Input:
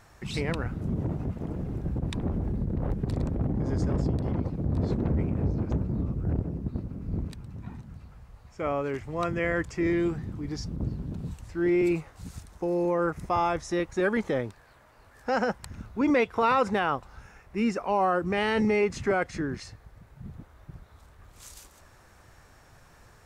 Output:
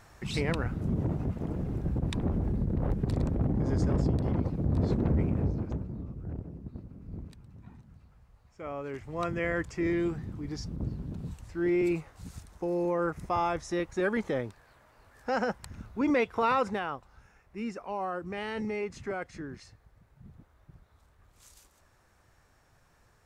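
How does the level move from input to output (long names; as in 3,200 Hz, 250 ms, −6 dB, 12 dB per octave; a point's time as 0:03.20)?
0:05.34 0 dB
0:05.99 −10 dB
0:08.64 −10 dB
0:09.21 −3 dB
0:16.56 −3 dB
0:16.97 −9.5 dB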